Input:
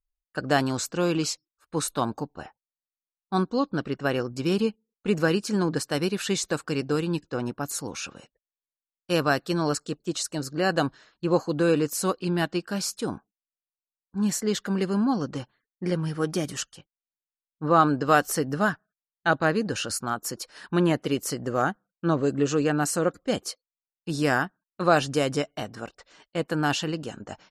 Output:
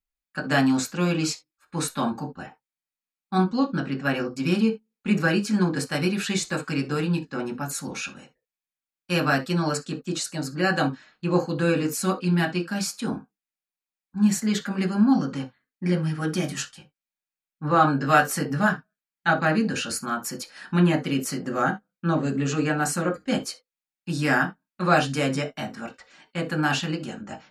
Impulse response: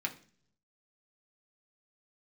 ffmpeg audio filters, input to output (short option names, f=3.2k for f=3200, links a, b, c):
-filter_complex "[0:a]asettb=1/sr,asplit=3[a][b][c];[a]atrim=end=16.354[d];[b]atrim=start=16.35:end=18.69,asetpts=PTS-STARTPTS,afade=t=in:d=0.004:c=qsin,afade=t=out:st=2.336:d=0.004:c=qsin,asplit=2[e][f];[f]adelay=21,volume=-10dB[g];[e][g]amix=inputs=2:normalize=0,atrim=end_sample=103194[h];[c]atrim=start=18.686[i];[d][h]acrossfade=d=0.004:c1=hsin:c2=qsin[j];[j][i]acrossfade=d=0.004:c1=qsin:c2=hsin[k];[1:a]atrim=start_sample=2205,afade=t=out:st=0.13:d=0.01,atrim=end_sample=6174[l];[k][l]afir=irnorm=-1:irlink=0"